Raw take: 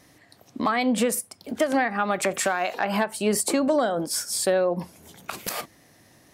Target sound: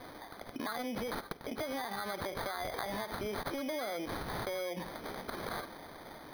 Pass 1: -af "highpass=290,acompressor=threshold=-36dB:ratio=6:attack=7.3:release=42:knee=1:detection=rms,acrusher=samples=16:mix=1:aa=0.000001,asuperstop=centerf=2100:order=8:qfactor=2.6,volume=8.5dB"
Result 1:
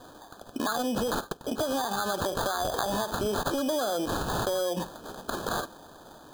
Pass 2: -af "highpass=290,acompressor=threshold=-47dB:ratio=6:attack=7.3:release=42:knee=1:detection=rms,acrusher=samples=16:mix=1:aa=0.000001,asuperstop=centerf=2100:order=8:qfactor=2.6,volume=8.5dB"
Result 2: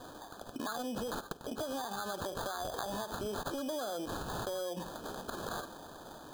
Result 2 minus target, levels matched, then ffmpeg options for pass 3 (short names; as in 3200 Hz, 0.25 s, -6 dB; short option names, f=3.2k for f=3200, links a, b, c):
8000 Hz band +5.0 dB
-af "highpass=290,acompressor=threshold=-47dB:ratio=6:attack=7.3:release=42:knee=1:detection=rms,acrusher=samples=16:mix=1:aa=0.000001,asuperstop=centerf=7500:order=8:qfactor=2.6,volume=8.5dB"